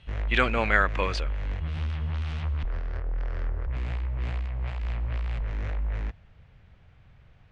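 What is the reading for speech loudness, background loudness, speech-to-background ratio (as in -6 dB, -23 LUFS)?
-25.5 LUFS, -32.5 LUFS, 7.0 dB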